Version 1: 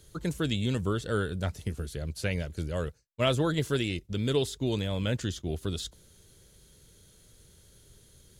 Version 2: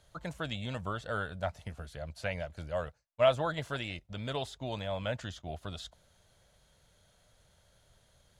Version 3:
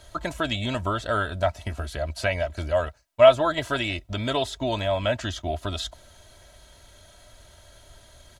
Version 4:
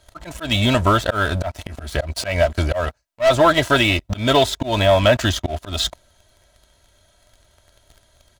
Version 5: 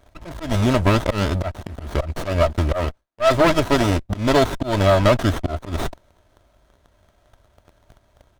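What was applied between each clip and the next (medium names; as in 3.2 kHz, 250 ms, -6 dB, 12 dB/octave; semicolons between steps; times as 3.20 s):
low-pass 1.9 kHz 6 dB/octave; resonant low shelf 510 Hz -8.5 dB, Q 3
comb 3.1 ms, depth 64%; in parallel at +1 dB: compression, threshold -41 dBFS, peak gain reduction 22.5 dB; on the sum: trim +6.5 dB
waveshaping leveller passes 3; slow attack 169 ms
sliding maximum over 17 samples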